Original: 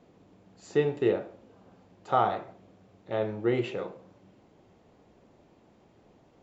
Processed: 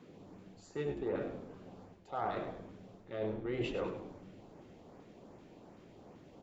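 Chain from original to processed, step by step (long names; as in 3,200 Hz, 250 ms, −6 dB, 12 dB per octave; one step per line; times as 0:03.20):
one-sided soft clipper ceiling −19.5 dBFS
high-pass filter 110 Hz
high-shelf EQ 6,000 Hz −4.5 dB
reversed playback
downward compressor 16 to 1, threshold −37 dBFS, peak gain reduction 17.5 dB
reversed playback
auto-filter notch saw up 2.6 Hz 570–4,200 Hz
on a send: echo with shifted repeats 100 ms, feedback 42%, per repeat −87 Hz, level −9 dB
on the sum: level +4.5 dB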